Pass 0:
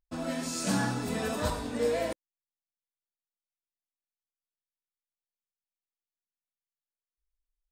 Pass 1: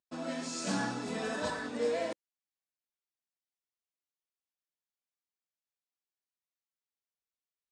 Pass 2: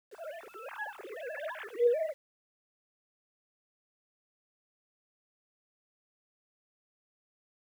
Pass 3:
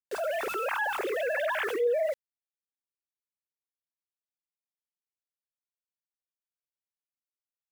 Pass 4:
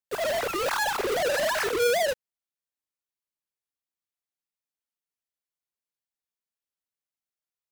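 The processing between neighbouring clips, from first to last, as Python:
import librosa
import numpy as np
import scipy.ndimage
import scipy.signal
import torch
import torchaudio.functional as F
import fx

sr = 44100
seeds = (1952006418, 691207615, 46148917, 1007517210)

y1 = scipy.signal.sosfilt(scipy.signal.butter(4, 7900.0, 'lowpass', fs=sr, output='sos'), x)
y1 = fx.spec_repair(y1, sr, seeds[0], start_s=1.31, length_s=0.34, low_hz=1100.0, high_hz=2300.0, source='before')
y1 = scipy.signal.sosfilt(scipy.signal.butter(2, 190.0, 'highpass', fs=sr, output='sos'), y1)
y1 = y1 * librosa.db_to_amplitude(-3.0)
y2 = fx.sine_speech(y1, sr)
y2 = fx.env_lowpass(y2, sr, base_hz=650.0, full_db=-37.0)
y2 = fx.quant_dither(y2, sr, seeds[1], bits=10, dither='none')
y3 = fx.env_flatten(y2, sr, amount_pct=70)
y3 = y3 * librosa.db_to_amplitude(-1.5)
y4 = fx.halfwave_hold(y3, sr)
y4 = fx.record_warp(y4, sr, rpm=78.0, depth_cents=160.0)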